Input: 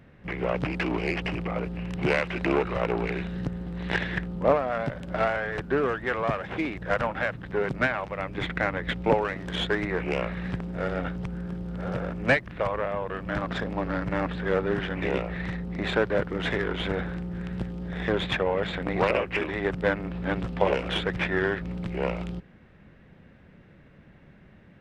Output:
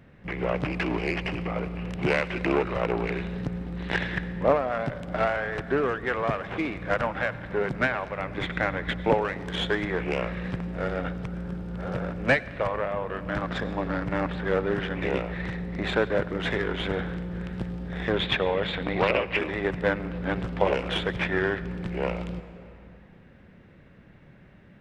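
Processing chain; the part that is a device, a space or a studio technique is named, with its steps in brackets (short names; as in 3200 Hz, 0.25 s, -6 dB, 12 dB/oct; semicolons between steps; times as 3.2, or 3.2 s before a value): compressed reverb return (on a send at -7.5 dB: reverb RT60 1.9 s, pre-delay 86 ms + compressor 6:1, threshold -32 dBFS, peak gain reduction 13 dB); 18.16–19.39 on the sum: EQ curve 1600 Hz 0 dB, 3400 Hz +5 dB, 6700 Hz -4 dB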